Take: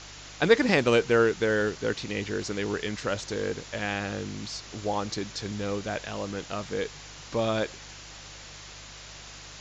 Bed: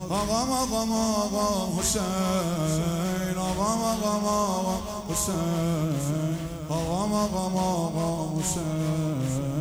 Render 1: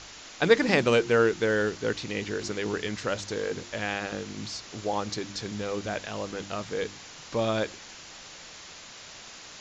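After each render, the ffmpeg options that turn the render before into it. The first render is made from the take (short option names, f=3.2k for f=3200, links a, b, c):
-af "bandreject=f=50:t=h:w=4,bandreject=f=100:t=h:w=4,bandreject=f=150:t=h:w=4,bandreject=f=200:t=h:w=4,bandreject=f=250:t=h:w=4,bandreject=f=300:t=h:w=4,bandreject=f=350:t=h:w=4"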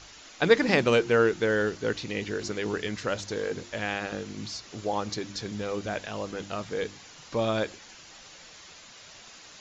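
-af "afftdn=nr=6:nf=-46"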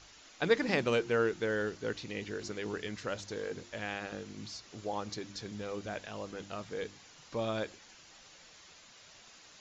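-af "volume=-7.5dB"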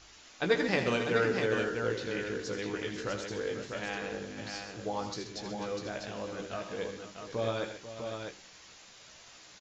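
-filter_complex "[0:a]asplit=2[a][b];[b]adelay=16,volume=-7dB[c];[a][c]amix=inputs=2:normalize=0,asplit=2[d][e];[e]aecho=0:1:80|131|491|648:0.335|0.282|0.251|0.531[f];[d][f]amix=inputs=2:normalize=0"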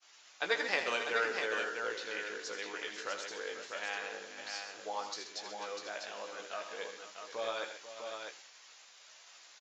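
-af "agate=range=-33dB:threshold=-50dB:ratio=3:detection=peak,highpass=690"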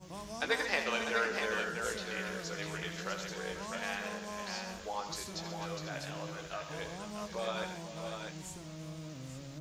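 -filter_complex "[1:a]volume=-18.5dB[a];[0:a][a]amix=inputs=2:normalize=0"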